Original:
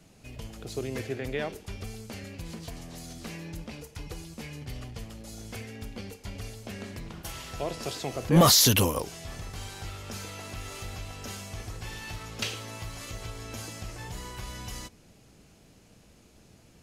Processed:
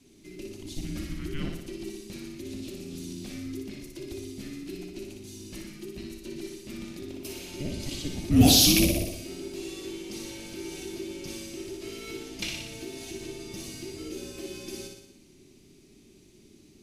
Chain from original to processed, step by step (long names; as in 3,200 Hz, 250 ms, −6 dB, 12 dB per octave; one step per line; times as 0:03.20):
flat-topped bell 1,700 Hz −10 dB 1.1 octaves
flutter between parallel walls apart 10.3 metres, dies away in 0.83 s
frequency shifter −430 Hz
level −1 dB